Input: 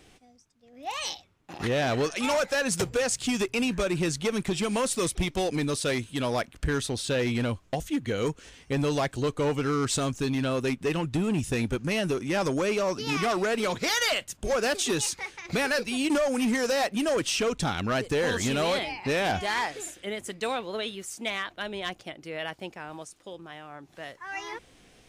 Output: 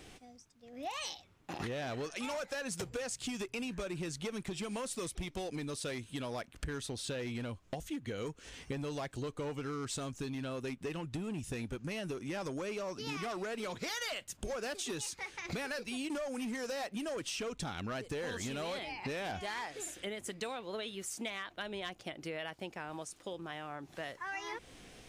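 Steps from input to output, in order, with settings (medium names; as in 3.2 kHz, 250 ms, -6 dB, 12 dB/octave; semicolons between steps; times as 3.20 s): compression 6:1, threshold -40 dBFS, peak gain reduction 15.5 dB; trim +2 dB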